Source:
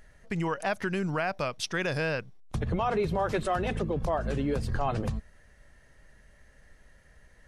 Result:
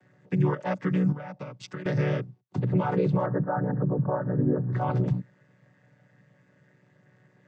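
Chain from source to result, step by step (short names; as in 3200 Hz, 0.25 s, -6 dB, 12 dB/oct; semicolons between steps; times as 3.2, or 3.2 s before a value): chord vocoder minor triad, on B2; 1.12–1.86 compressor 12:1, threshold -39 dBFS, peak gain reduction 12.5 dB; 3.26–4.73 steep low-pass 1800 Hz 96 dB/oct; gain +5 dB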